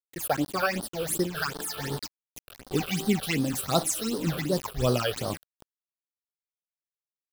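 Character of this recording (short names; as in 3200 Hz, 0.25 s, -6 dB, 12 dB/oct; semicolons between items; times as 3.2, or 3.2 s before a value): a quantiser's noise floor 6-bit, dither none; phasing stages 8, 2.7 Hz, lowest notch 250–2400 Hz; noise-modulated level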